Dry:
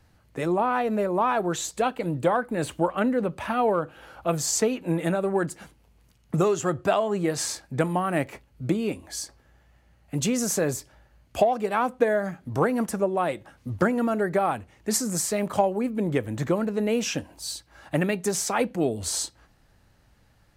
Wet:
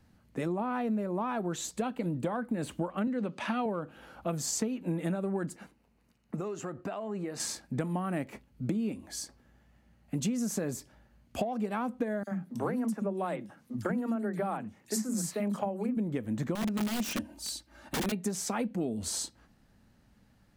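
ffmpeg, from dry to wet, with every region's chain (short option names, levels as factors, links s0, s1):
-filter_complex "[0:a]asettb=1/sr,asplit=3[s0][s1][s2];[s0]atrim=end=3.074[s3];[s1]atrim=start=3.07:end=3.66,asetpts=PTS-STARTPTS,afade=t=in:d=0.004:c=qsin,afade=t=out:st=0.586:d=0.004:c=qsin,highpass=190,lowpass=5800,highshelf=f=2400:g=10.5[s4];[s2]atrim=start=3.656[s5];[s3][s4]acrossfade=d=0.004:c1=hsin:c2=qsin[s6];[s6][s5]acrossfade=d=0.004:c1=qsin:c2=hsin,asettb=1/sr,asplit=3[s7][s8][s9];[s7]atrim=end=5.564[s10];[s8]atrim=start=5.56:end=7.4,asetpts=PTS-STARTPTS,afade=t=in:d=0.004:c=qsin,afade=t=out:st=1.836:d=0.004:c=qsin,bass=f=250:g=-8,treble=f=4000:g=-6,bandreject=f=3300:w=8.6,acompressor=threshold=0.0251:ratio=3:attack=3.2:release=140:knee=1:detection=peak[s11];[s9]atrim=start=7.396[s12];[s10][s11]acrossfade=d=0.004:c1=hsin:c2=qsin[s13];[s13][s12]acrossfade=d=0.004:c1=qsin:c2=hsin,asettb=1/sr,asplit=3[s14][s15][s16];[s14]atrim=end=12.234[s17];[s15]atrim=start=12.23:end=15.97,asetpts=PTS-STARTPTS,afade=t=in:d=0.004:c=qsin,afade=t=out:st=3.736:d=0.004:c=qsin,highpass=140,acrossover=split=270|3000[s18][s19][s20];[s19]adelay=40[s21];[s18]adelay=80[s22];[s22][s21][s20]amix=inputs=3:normalize=0,atrim=end_sample=164934[s23];[s16]atrim=start=15.966[s24];[s17][s23]acrossfade=d=0.004:c1=hsin:c2=qsin[s25];[s25][s24]acrossfade=d=0.004:c1=qsin:c2=hsin,asettb=1/sr,asplit=3[s26][s27][s28];[s26]atrim=end=16.554[s29];[s27]atrim=start=16.55:end=18.12,asetpts=PTS-STARTPTS,afade=t=in:d=0.004:c=qsin,afade=t=out:st=1.566:d=0.004:c=qsin,bandreject=f=980:w=22,aecho=1:1:3.3:0.65,atrim=end_sample=69237,aeval=exprs='(mod(11.2*val(0)+1,2)-1)/11.2':c=same[s30];[s28]atrim=start=18.116[s31];[s29][s30]acrossfade=d=0.004:c1=hsin:c2=qsin[s32];[s32][s31]acrossfade=d=0.004:c1=qsin:c2=hsin,equalizer=f=220:t=o:w=0.74:g=11.5,acompressor=threshold=0.0708:ratio=6,volume=0.531"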